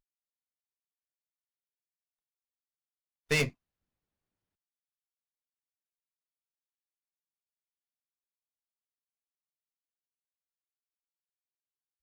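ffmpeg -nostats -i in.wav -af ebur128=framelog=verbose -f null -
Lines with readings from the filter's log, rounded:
Integrated loudness:
  I:         -30.1 LUFS
  Threshold: -40.1 LUFS
Loudness range:
  LRA:         0.0 LU
  Threshold: -58.0 LUFS
  LRA low:   -37.9 LUFS
  LRA high:  -37.9 LUFS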